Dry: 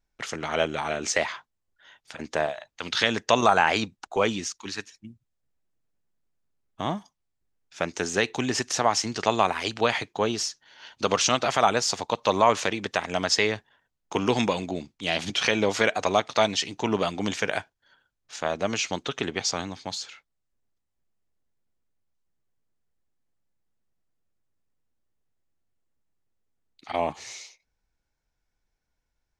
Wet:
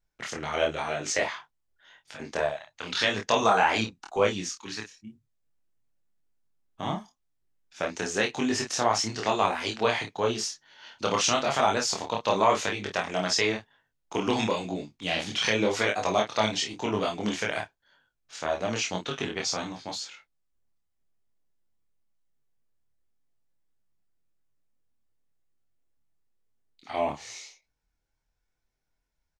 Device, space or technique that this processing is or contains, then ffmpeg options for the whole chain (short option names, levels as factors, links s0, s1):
double-tracked vocal: -filter_complex "[0:a]asplit=2[s0][s1];[s1]adelay=28,volume=0.562[s2];[s0][s2]amix=inputs=2:normalize=0,flanger=delay=20:depth=7.1:speed=0.94"